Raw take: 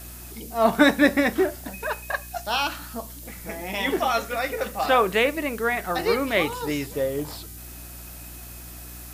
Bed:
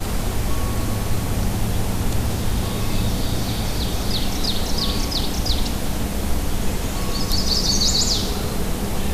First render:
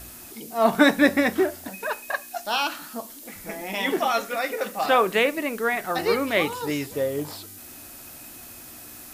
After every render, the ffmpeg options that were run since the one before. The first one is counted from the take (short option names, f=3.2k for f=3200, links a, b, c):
-af "bandreject=f=60:t=h:w=4,bandreject=f=120:t=h:w=4,bandreject=f=180:t=h:w=4"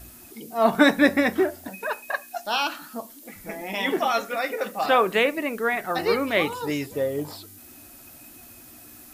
-af "afftdn=nr=6:nf=-43"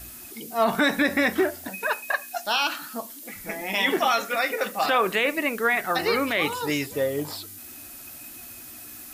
-filter_complex "[0:a]acrossover=split=1200[a][b];[b]acontrast=38[c];[a][c]amix=inputs=2:normalize=0,alimiter=limit=-12dB:level=0:latency=1:release=51"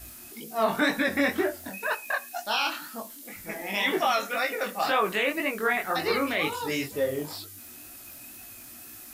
-af "flanger=delay=18.5:depth=6.6:speed=2"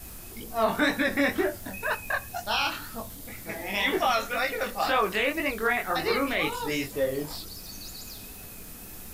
-filter_complex "[1:a]volume=-24.5dB[a];[0:a][a]amix=inputs=2:normalize=0"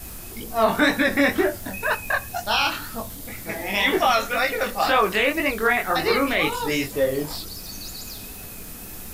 -af "volume=5.5dB"